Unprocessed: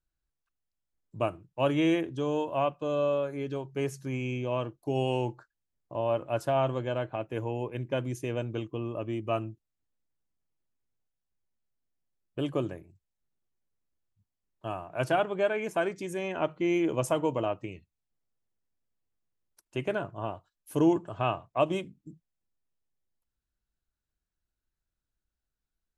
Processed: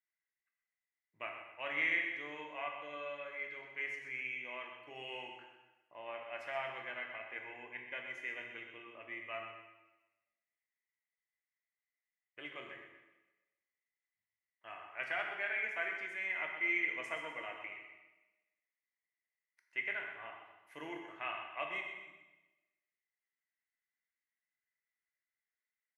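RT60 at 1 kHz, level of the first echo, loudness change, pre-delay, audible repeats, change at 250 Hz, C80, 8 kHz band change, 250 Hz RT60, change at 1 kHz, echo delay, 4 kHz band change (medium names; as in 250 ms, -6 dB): 1.1 s, -10.0 dB, -9.0 dB, 6 ms, 1, -23.5 dB, 5.0 dB, under -15 dB, 1.1 s, -12.0 dB, 126 ms, -6.5 dB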